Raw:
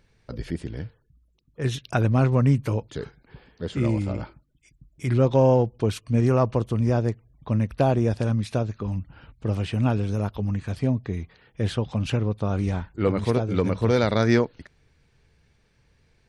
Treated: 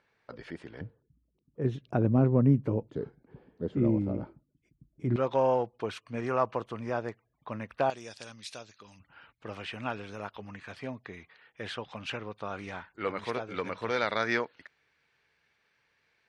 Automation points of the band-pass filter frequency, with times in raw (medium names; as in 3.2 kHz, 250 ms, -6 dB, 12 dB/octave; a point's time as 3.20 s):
band-pass filter, Q 0.83
1.2 kHz
from 0.81 s 300 Hz
from 5.16 s 1.4 kHz
from 7.90 s 5.2 kHz
from 9.00 s 1.8 kHz